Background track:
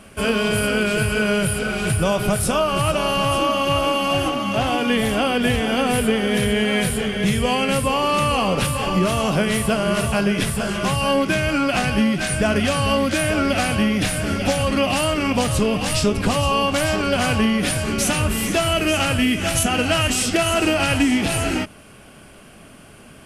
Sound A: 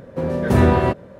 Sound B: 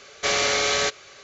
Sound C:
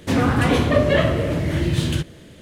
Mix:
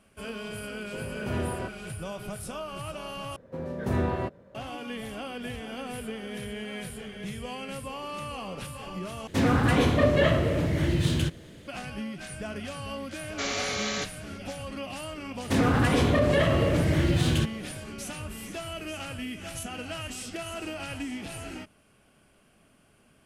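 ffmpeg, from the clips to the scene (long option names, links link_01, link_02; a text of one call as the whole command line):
ffmpeg -i bed.wav -i cue0.wav -i cue1.wav -i cue2.wav -filter_complex "[1:a]asplit=2[link_01][link_02];[3:a]asplit=2[link_03][link_04];[0:a]volume=-17.5dB[link_05];[link_03]acontrast=28[link_06];[link_04]alimiter=level_in=11dB:limit=-1dB:release=50:level=0:latency=1[link_07];[link_05]asplit=3[link_08][link_09][link_10];[link_08]atrim=end=3.364[link_11];[link_02]atrim=end=1.19,asetpts=PTS-STARTPTS,volume=-12.5dB[link_12];[link_09]atrim=start=4.546:end=9.274[link_13];[link_06]atrim=end=2.41,asetpts=PTS-STARTPTS,volume=-9dB[link_14];[link_10]atrim=start=11.676[link_15];[link_01]atrim=end=1.19,asetpts=PTS-STARTPTS,volume=-16.5dB,afade=type=in:duration=0.004:curve=hsin,afade=type=out:start_time=1.186:duration=0.004:curve=hsin,adelay=760[link_16];[2:a]atrim=end=1.23,asetpts=PTS-STARTPTS,volume=-9dB,afade=type=in:duration=0.004:curve=hsin,afade=type=out:start_time=1.226:duration=0.004:curve=hsin,adelay=13150[link_17];[link_07]atrim=end=2.41,asetpts=PTS-STARTPTS,volume=-13dB,afade=type=in:duration=0.004:curve=hsin,afade=type=out:start_time=2.406:duration=0.004:curve=hsin,adelay=15430[link_18];[link_11][link_12]acrossfade=duration=0.004:curve1=hsin:curve2=hsin[link_19];[link_19][link_13]acrossfade=duration=0.004:curve1=hsin:curve2=hsin[link_20];[link_20][link_14]acrossfade=duration=0.004:curve1=hsin:curve2=hsin[link_21];[link_21][link_15]acrossfade=duration=0.004:curve1=hsin:curve2=hsin[link_22];[link_22][link_16][link_17][link_18]amix=inputs=4:normalize=0" out.wav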